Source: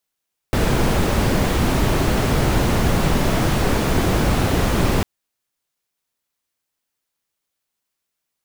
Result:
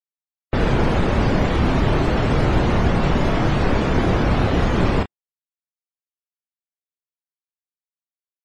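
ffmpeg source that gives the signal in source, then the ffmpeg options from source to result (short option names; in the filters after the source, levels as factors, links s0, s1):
-f lavfi -i "anoisesrc=c=brown:a=0.661:d=4.5:r=44100:seed=1"
-filter_complex "[0:a]afftdn=nr=35:nf=-32,asplit=2[s0][s1];[s1]adelay=28,volume=0.335[s2];[s0][s2]amix=inputs=2:normalize=0"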